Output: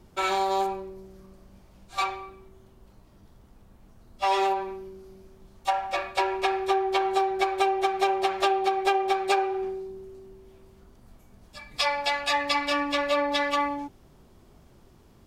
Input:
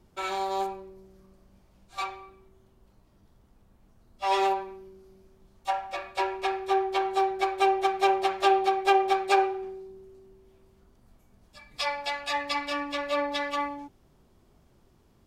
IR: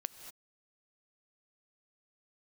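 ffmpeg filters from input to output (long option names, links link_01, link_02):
-af "acompressor=threshold=-27dB:ratio=6,volume=6.5dB"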